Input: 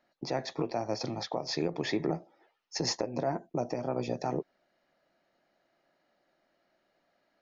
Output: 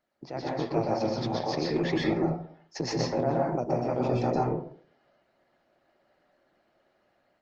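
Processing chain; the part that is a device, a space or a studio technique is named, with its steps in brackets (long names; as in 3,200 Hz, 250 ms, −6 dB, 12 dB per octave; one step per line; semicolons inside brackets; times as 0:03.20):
high-frequency loss of the air 94 metres
0:01.62–0:02.17: notch filter 430 Hz, Q 12
speakerphone in a meeting room (convolution reverb RT60 0.50 s, pre-delay 116 ms, DRR −2.5 dB; automatic gain control gain up to 7.5 dB; level −6 dB; Opus 16 kbit/s 48,000 Hz)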